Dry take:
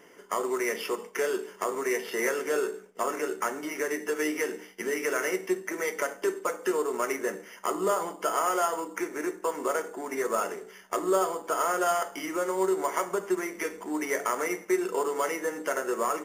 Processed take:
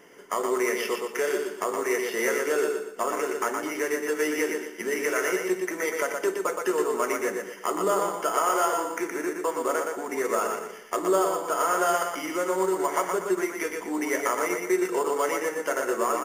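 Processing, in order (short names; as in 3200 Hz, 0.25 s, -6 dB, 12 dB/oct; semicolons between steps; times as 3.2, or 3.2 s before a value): feedback echo 0.119 s, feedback 34%, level -4.5 dB; gain +1.5 dB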